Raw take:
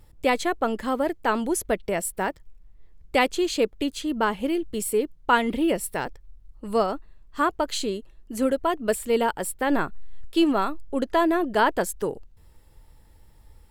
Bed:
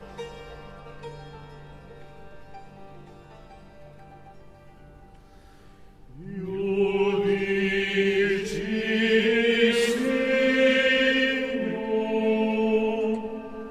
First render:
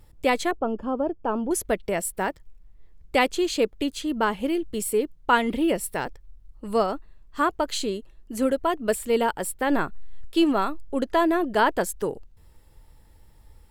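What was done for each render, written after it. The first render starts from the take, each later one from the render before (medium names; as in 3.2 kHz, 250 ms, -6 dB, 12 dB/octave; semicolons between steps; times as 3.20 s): 0.51–1.51 s: boxcar filter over 22 samples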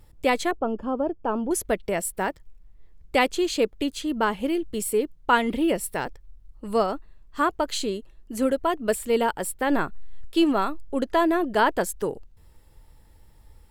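no audible change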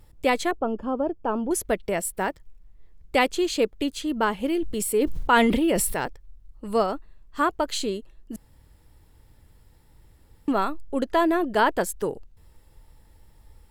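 4.54–6.06 s: decay stretcher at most 27 dB/s; 8.36–10.48 s: room tone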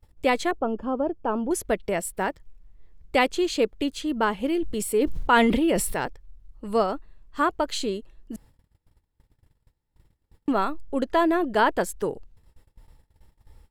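gate -50 dBFS, range -23 dB; treble shelf 8.8 kHz -6 dB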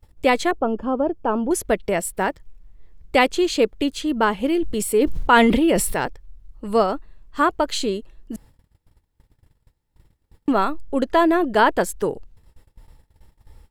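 trim +4.5 dB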